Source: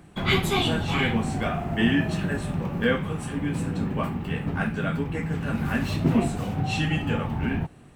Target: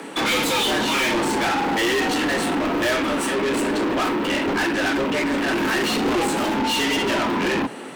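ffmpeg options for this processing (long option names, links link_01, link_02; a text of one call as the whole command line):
ffmpeg -i in.wav -filter_complex "[0:a]afreqshift=120,asplit=2[link_01][link_02];[link_02]highpass=frequency=720:poles=1,volume=33dB,asoftclip=type=tanh:threshold=-9dB[link_03];[link_01][link_03]amix=inputs=2:normalize=0,lowpass=frequency=7700:poles=1,volume=-6dB,volume=-5.5dB" out.wav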